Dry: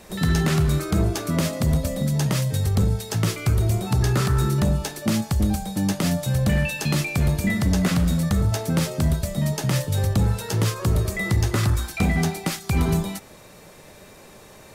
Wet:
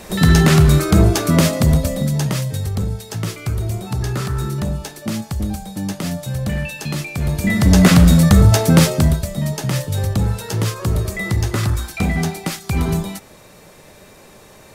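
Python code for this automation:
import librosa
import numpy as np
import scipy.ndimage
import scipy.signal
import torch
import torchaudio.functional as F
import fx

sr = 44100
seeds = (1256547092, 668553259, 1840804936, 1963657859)

y = fx.gain(x, sr, db=fx.line((1.41, 9.0), (2.79, -1.5), (7.16, -1.5), (7.81, 11.0), (8.84, 11.0), (9.28, 2.0)))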